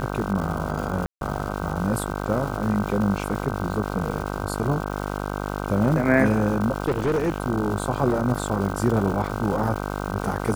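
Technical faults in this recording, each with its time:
buzz 50 Hz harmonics 31 -29 dBFS
crackle 450 per s -31 dBFS
1.06–1.21 s: dropout 152 ms
6.86–7.40 s: clipped -18.5 dBFS

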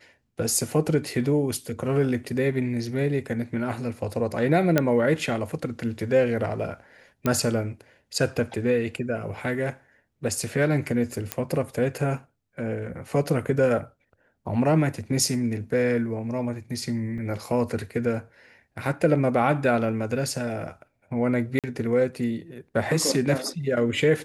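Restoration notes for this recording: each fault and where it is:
4.78 s: pop -6 dBFS
7.26 s: pop -11 dBFS
11.32 s: pop -8 dBFS
17.18 s: dropout 2.9 ms
21.59–21.64 s: dropout 47 ms

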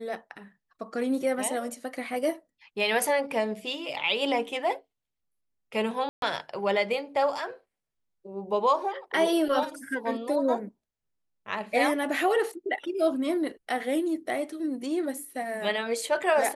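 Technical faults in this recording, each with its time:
6.09–6.22 s: dropout 132 ms

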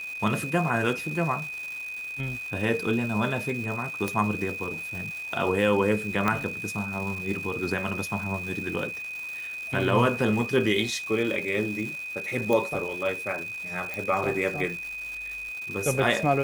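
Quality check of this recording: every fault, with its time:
crackle 520 per s -35 dBFS
whine 2.5 kHz -33 dBFS
4.08 s: pop -13 dBFS
6.28 s: pop -11 dBFS
12.53 s: pop
13.94 s: pop

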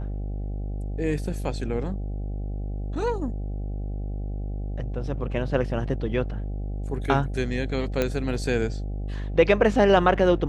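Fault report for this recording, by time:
buzz 50 Hz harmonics 16 -30 dBFS
8.02 s: pop -10 dBFS

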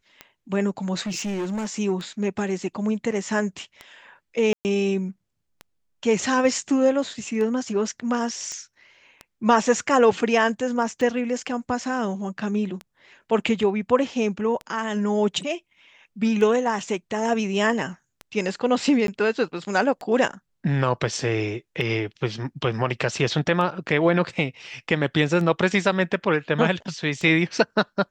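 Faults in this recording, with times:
tick 33 1/3 rpm -20 dBFS
1.01–1.79 s: clipped -24.5 dBFS
4.53–4.65 s: dropout 119 ms
8.52 s: pop -20 dBFS
19.07–19.08 s: dropout 12 ms

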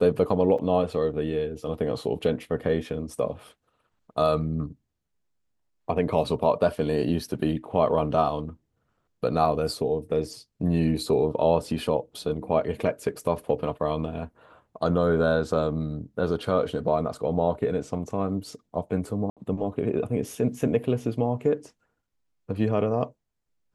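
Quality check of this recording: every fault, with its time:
0.58–0.59 s: dropout 5.4 ms
19.30–19.37 s: dropout 67 ms

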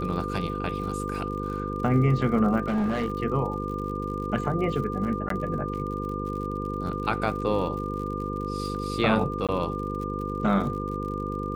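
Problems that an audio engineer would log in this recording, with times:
buzz 50 Hz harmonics 10 -32 dBFS
crackle 66 per s -36 dBFS
whine 1.2 kHz -33 dBFS
2.64–3.12 s: clipped -22 dBFS
5.29–5.30 s: dropout 13 ms
9.47–9.49 s: dropout 17 ms

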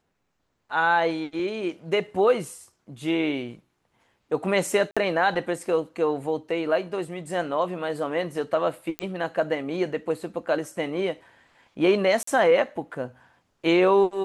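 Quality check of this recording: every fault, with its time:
4.91–4.97 s: dropout 56 ms
8.99 s: pop -13 dBFS
12.23–12.27 s: dropout 44 ms

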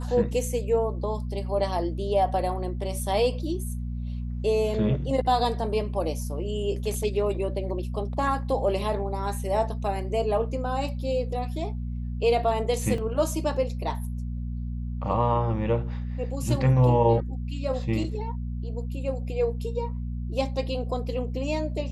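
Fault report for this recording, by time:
hum 60 Hz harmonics 4 -31 dBFS
12.98 s: dropout 2.2 ms

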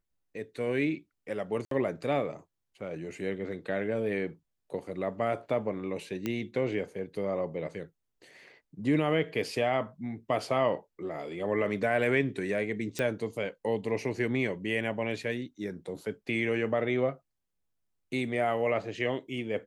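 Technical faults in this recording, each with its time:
1.65–1.71 s: dropout 63 ms
6.26 s: pop -18 dBFS
12.99 s: pop -17 dBFS

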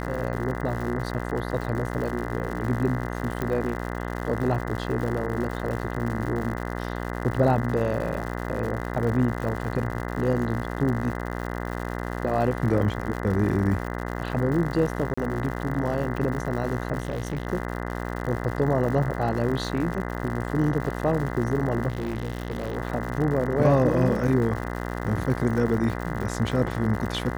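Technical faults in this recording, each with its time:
buzz 60 Hz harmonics 34 -31 dBFS
crackle 150 per s -32 dBFS
3.42 s: pop -15 dBFS
15.14–15.18 s: dropout 35 ms
17.00–17.47 s: clipped -24 dBFS
21.88–22.77 s: clipped -24.5 dBFS

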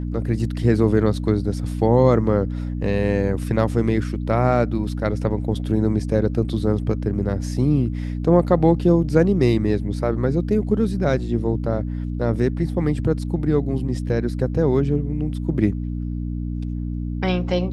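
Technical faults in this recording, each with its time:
hum 60 Hz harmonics 5 -26 dBFS

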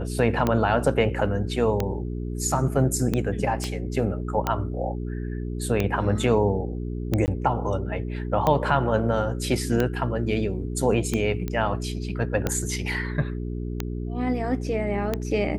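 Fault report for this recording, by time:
hum 60 Hz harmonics 7 -30 dBFS
tick 45 rpm -10 dBFS
3.64 s: pop -15 dBFS
7.26–7.28 s: dropout 19 ms
11.48 s: pop -16 dBFS

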